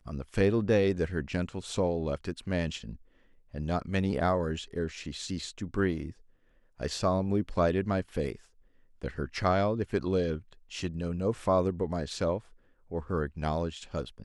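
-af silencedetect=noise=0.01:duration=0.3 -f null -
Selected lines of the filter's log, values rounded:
silence_start: 2.96
silence_end: 3.54 | silence_duration: 0.58
silence_start: 6.11
silence_end: 6.80 | silence_duration: 0.68
silence_start: 8.35
silence_end: 9.02 | silence_duration: 0.66
silence_start: 12.40
silence_end: 12.91 | silence_duration: 0.52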